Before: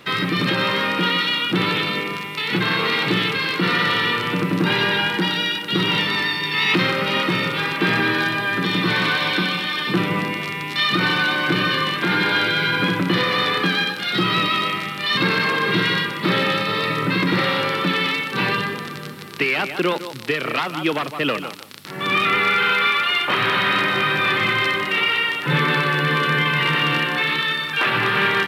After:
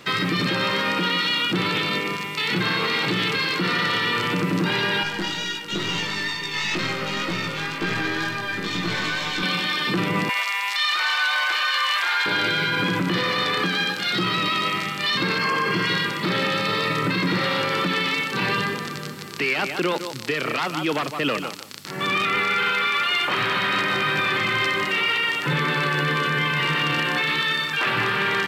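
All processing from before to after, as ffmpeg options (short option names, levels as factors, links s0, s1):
-filter_complex "[0:a]asettb=1/sr,asplit=3[s0][s1][s2];[s0]atrim=end=5.034[s3];[s1]atrim=start=5.03:end=9.43,asetpts=PTS-STARTPTS,afade=t=in:d=0.004:c=qsin,afade=t=out:st=4.396:d=0.004:c=qsin,aeval=exprs='(tanh(3.16*val(0)+0.6)-tanh(0.6))/3.16':c=same,flanger=delay=17.5:depth=2.2:speed=2.1[s4];[s2]atrim=start=9.426[s5];[s3][s4]acrossfade=d=0.004:c1=hsin:c2=qsin[s6];[s6][s5]acrossfade=d=0.004:c1=qsin:c2=hsin,asettb=1/sr,asplit=3[s7][s8][s9];[s7]atrim=end=10.294[s10];[s8]atrim=start=10.29:end=12.26,asetpts=PTS-STARTPTS,afade=t=in:d=0.004:c=qsin,afade=t=out:st=1.966:d=0.004:c=qsin,acontrast=58,highpass=f=750:w=0.5412,highpass=f=750:w=1.3066[s11];[s9]atrim=start=12.256[s12];[s10][s11]acrossfade=d=0.004:c1=hsin:c2=qsin[s13];[s13][s12]acrossfade=d=0.004:c1=qsin:c2=hsin,asettb=1/sr,asplit=3[s14][s15][s16];[s14]atrim=end=15.384[s17];[s15]atrim=start=15.38:end=15.87,asetpts=PTS-STARTPTS,afade=t=in:d=0.004:c=qsin,afade=t=out:st=0.486:d=0.004:c=qsin,asuperstop=centerf=3800:order=4:qfactor=6.5,equalizer=f=1100:w=7.8:g=6[s18];[s16]atrim=start=15.866[s19];[s17][s18]acrossfade=d=0.004:c1=hsin:c2=qsin[s20];[s20][s19]acrossfade=d=0.004:c1=qsin:c2=hsin,superequalizer=14b=1.58:15b=2,alimiter=limit=0.2:level=0:latency=1:release=23"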